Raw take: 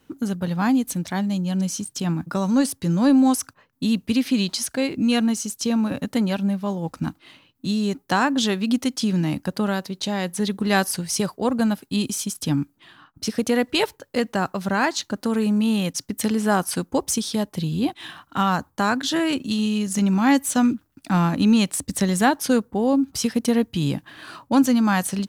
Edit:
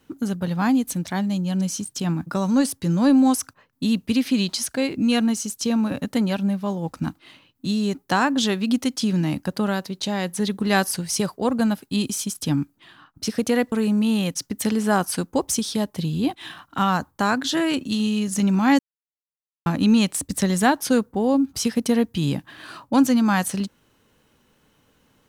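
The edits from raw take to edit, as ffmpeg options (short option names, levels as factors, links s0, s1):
-filter_complex "[0:a]asplit=4[s0][s1][s2][s3];[s0]atrim=end=13.722[s4];[s1]atrim=start=15.308:end=20.38,asetpts=PTS-STARTPTS,afade=t=out:st=5.068:d=0.004:c=hsin[s5];[s2]atrim=start=20.38:end=21.25,asetpts=PTS-STARTPTS,volume=0[s6];[s3]atrim=start=21.25,asetpts=PTS-STARTPTS,afade=t=in:d=0.004:c=hsin[s7];[s5][s6][s7]concat=n=3:v=0:a=1[s8];[s4][s8]acrossfade=d=0.004:c1=hsin:c2=hsin"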